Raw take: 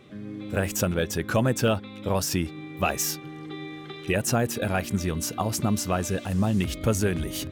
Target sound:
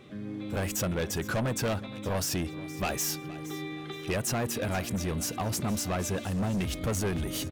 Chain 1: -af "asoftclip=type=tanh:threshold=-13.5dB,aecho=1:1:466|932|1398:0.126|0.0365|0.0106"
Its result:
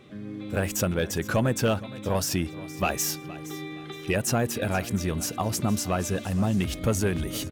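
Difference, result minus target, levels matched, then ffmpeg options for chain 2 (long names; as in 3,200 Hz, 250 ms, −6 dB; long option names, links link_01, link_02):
soft clipping: distortion −14 dB
-af "asoftclip=type=tanh:threshold=-25.5dB,aecho=1:1:466|932|1398:0.126|0.0365|0.0106"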